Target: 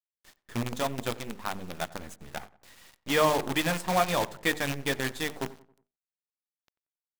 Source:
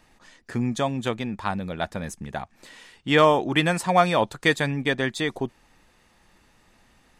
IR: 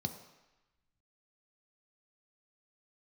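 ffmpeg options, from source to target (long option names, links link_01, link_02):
-filter_complex "[0:a]bandreject=frequency=50:width_type=h:width=6,bandreject=frequency=100:width_type=h:width=6,bandreject=frequency=150:width_type=h:width=6,bandreject=frequency=200:width_type=h:width=6,bandreject=frequency=250:width_type=h:width=6,bandreject=frequency=300:width_type=h:width=6,bandreject=frequency=350:width_type=h:width=6,bandreject=frequency=400:width_type=h:width=6,bandreject=frequency=450:width_type=h:width=6,aeval=exprs='0.631*(cos(1*acos(clip(val(0)/0.631,-1,1)))-cos(1*PI/2))+0.126*(cos(4*acos(clip(val(0)/0.631,-1,1)))-cos(4*PI/2))+0.0501*(cos(5*acos(clip(val(0)/0.631,-1,1)))-cos(5*PI/2))+0.0794*(cos(6*acos(clip(val(0)/0.631,-1,1)))-cos(6*PI/2))':channel_layout=same,flanger=delay=2.7:depth=8.9:regen=-60:speed=0.66:shape=triangular,acrusher=bits=5:dc=4:mix=0:aa=0.000001,asplit=2[link_01][link_02];[link_02]adelay=91,lowpass=frequency=2000:poles=1,volume=-18.5dB,asplit=2[link_03][link_04];[link_04]adelay=91,lowpass=frequency=2000:poles=1,volume=0.45,asplit=2[link_05][link_06];[link_06]adelay=91,lowpass=frequency=2000:poles=1,volume=0.45,asplit=2[link_07][link_08];[link_08]adelay=91,lowpass=frequency=2000:poles=1,volume=0.45[link_09];[link_03][link_05][link_07][link_09]amix=inputs=4:normalize=0[link_10];[link_01][link_10]amix=inputs=2:normalize=0,volume=-4dB"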